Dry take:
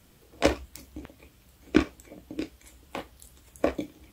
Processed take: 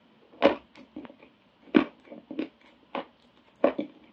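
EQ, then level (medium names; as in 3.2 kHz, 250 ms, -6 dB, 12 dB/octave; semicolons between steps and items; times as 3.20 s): cabinet simulation 210–3600 Hz, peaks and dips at 230 Hz +10 dB, 580 Hz +5 dB, 960 Hz +8 dB, 3 kHz +4 dB; -1.0 dB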